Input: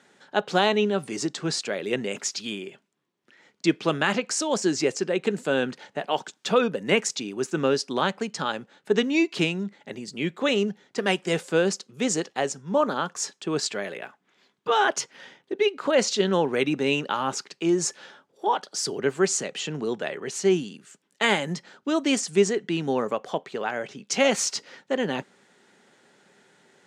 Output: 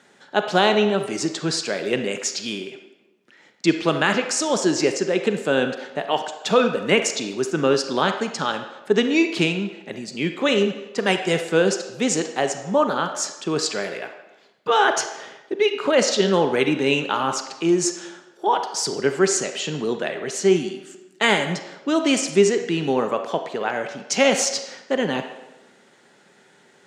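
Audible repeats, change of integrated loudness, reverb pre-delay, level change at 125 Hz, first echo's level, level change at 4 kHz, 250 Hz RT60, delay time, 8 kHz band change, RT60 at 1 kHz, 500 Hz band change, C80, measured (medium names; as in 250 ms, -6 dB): no echo, +4.0 dB, 33 ms, +3.5 dB, no echo, +4.0 dB, 1.2 s, no echo, +4.0 dB, 1.0 s, +4.0 dB, 10.5 dB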